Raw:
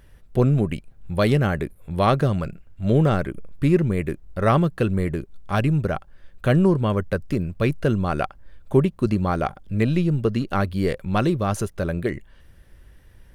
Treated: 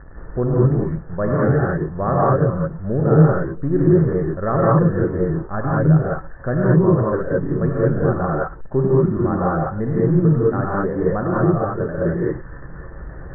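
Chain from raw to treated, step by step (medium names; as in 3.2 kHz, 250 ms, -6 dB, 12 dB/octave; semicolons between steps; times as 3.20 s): jump at every zero crossing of -29.5 dBFS; rippled Chebyshev low-pass 1.8 kHz, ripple 3 dB; gated-style reverb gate 240 ms rising, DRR -6 dB; trim -3 dB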